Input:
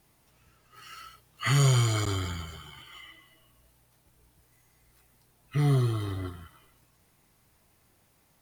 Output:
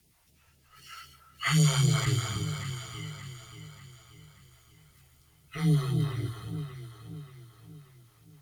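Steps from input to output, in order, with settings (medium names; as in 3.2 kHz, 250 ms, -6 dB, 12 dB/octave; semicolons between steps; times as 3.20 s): phase shifter stages 2, 3.9 Hz, lowest notch 180–1300 Hz; echo whose repeats swap between lows and highs 291 ms, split 1.2 kHz, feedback 68%, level -6 dB; frequency shift +16 Hz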